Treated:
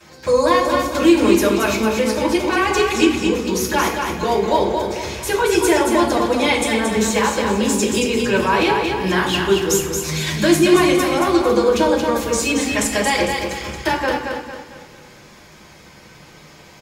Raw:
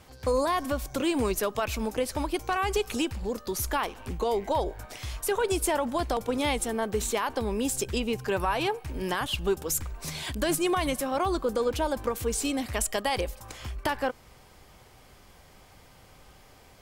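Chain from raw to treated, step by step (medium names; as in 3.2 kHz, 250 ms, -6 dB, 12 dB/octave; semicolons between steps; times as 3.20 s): feedback delay 226 ms, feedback 40%, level -5 dB; reverberation RT60 0.65 s, pre-delay 3 ms, DRR -14 dB; trim -1.5 dB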